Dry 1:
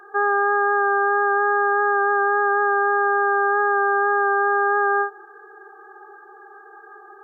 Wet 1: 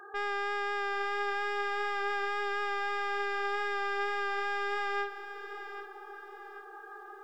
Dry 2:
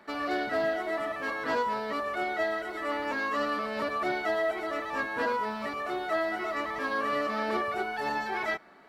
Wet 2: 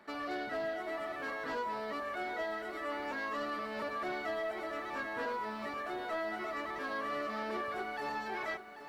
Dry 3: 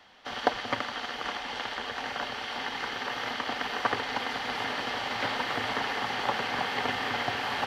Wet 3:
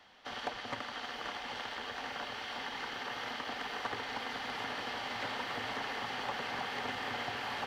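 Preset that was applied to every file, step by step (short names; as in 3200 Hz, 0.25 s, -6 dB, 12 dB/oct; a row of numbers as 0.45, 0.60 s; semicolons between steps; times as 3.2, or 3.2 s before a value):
in parallel at -2 dB: compressor, threshold -36 dBFS; on the sum: soft clip -19.5 dBFS; lo-fi delay 0.788 s, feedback 35%, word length 9-bit, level -11.5 dB; gain -9 dB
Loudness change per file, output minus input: -14.0, -7.0, -7.5 LU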